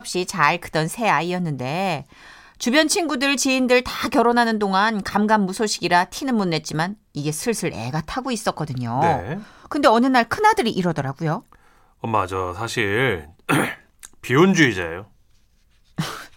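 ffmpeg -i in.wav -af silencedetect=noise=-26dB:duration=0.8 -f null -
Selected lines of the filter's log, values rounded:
silence_start: 14.99
silence_end: 15.98 | silence_duration: 0.99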